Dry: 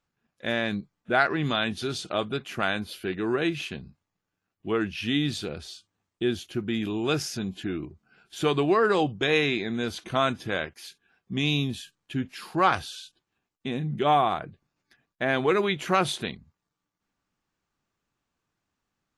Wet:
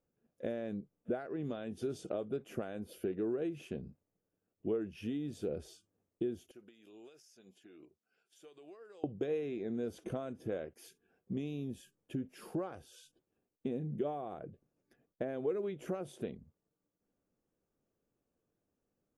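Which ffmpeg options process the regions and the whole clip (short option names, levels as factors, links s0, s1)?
-filter_complex "[0:a]asettb=1/sr,asplit=3[s0][s1][s2];[s0]atrim=end=6.514[s3];[s1]atrim=start=6.51:end=9.04,asetpts=PTS-STARTPTS,afade=t=in:d=0.004:c=qsin,afade=t=out:st=2.526:d=0.004:c=qsin,bandpass=f=5300:t=q:w=0.68,acompressor=threshold=0.00355:ratio=8:attack=3.2:release=140:knee=1:detection=peak[s4];[s2]atrim=start=9.036[s5];[s3][s4]acrossfade=d=0.004:c1=hsin:c2=qsin[s6];[s6][s5]acrossfade=d=0.004:c1=qsin:c2=hsin,bandreject=f=4100:w=11,acompressor=threshold=0.02:ratio=12,equalizer=f=250:t=o:w=1:g=3,equalizer=f=500:t=o:w=1:g=11,equalizer=f=1000:t=o:w=1:g=-8,equalizer=f=2000:t=o:w=1:g=-7,equalizer=f=4000:t=o:w=1:g=-12,equalizer=f=8000:t=o:w=1:g=-3,volume=0.631"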